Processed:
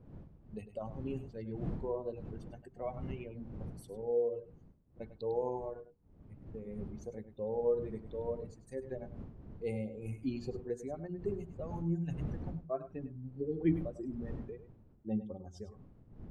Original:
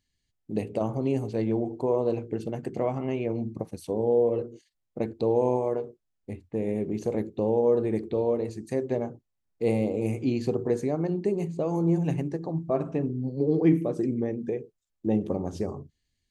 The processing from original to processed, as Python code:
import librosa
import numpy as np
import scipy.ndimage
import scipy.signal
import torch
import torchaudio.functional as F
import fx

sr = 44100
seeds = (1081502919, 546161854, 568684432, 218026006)

p1 = fx.bin_expand(x, sr, power=2.0)
p2 = fx.dmg_wind(p1, sr, seeds[0], corner_hz=170.0, level_db=-41.0)
p3 = p2 + fx.echo_single(p2, sr, ms=101, db=-13.0, dry=0)
y = p3 * 10.0 ** (-7.0 / 20.0)